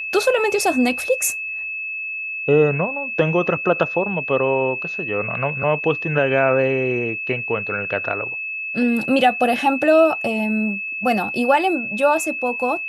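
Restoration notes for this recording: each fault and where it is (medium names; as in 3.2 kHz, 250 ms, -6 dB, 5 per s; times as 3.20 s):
whine 2.6 kHz -25 dBFS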